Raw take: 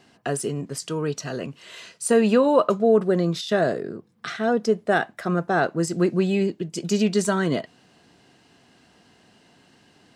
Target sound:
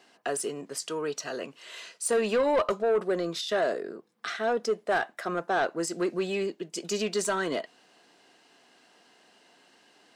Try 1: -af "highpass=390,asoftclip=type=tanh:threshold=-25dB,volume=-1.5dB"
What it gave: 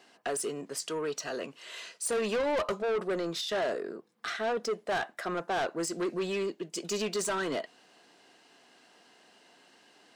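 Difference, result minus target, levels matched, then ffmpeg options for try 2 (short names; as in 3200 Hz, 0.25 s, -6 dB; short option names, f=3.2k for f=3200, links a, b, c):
soft clip: distortion +6 dB
-af "highpass=390,asoftclip=type=tanh:threshold=-17.5dB,volume=-1.5dB"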